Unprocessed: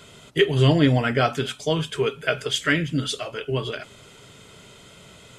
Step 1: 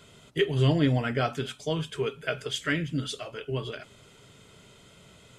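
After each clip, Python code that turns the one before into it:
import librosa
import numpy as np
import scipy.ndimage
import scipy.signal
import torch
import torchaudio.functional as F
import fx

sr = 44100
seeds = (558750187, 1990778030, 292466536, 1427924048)

y = fx.low_shelf(x, sr, hz=320.0, db=3.0)
y = F.gain(torch.from_numpy(y), -7.5).numpy()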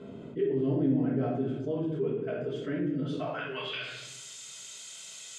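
y = fx.filter_sweep_bandpass(x, sr, from_hz=290.0, to_hz=6600.0, start_s=2.76, end_s=4.12, q=1.9)
y = fx.room_shoebox(y, sr, seeds[0], volume_m3=190.0, walls='mixed', distance_m=1.5)
y = fx.env_flatten(y, sr, amount_pct=50)
y = F.gain(torch.from_numpy(y), -7.0).numpy()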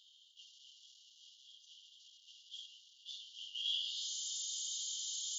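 y = fx.law_mismatch(x, sr, coded='mu')
y = fx.brickwall_bandpass(y, sr, low_hz=2800.0, high_hz=7300.0)
y = F.gain(torch.from_numpy(y), 1.0).numpy()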